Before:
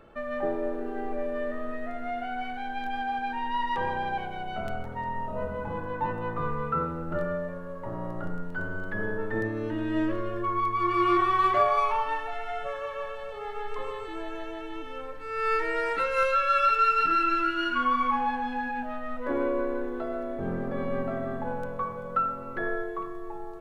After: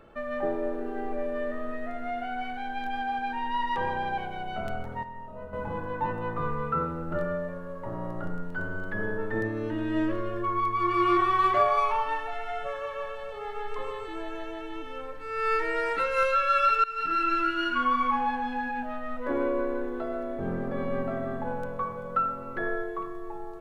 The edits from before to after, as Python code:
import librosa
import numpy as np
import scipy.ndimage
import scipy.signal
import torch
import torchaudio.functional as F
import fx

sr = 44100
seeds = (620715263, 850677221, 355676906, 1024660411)

y = fx.edit(x, sr, fx.clip_gain(start_s=5.03, length_s=0.5, db=-9.0),
    fx.fade_in_from(start_s=16.84, length_s=0.62, curve='qsin', floor_db=-20.5), tone=tone)